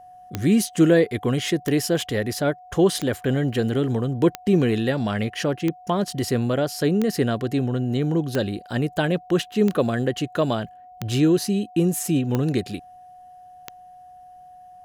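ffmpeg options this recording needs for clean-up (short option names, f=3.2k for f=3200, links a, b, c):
-af "adeclick=t=4,bandreject=f=730:w=30"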